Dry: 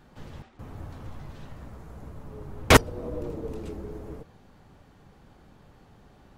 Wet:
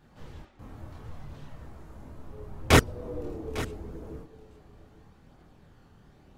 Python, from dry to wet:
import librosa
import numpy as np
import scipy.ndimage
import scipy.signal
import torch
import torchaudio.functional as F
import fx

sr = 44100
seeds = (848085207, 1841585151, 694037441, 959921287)

p1 = fx.chorus_voices(x, sr, voices=2, hz=0.37, base_ms=26, depth_ms=1.9, mix_pct=50)
y = p1 + fx.echo_single(p1, sr, ms=852, db=-15.5, dry=0)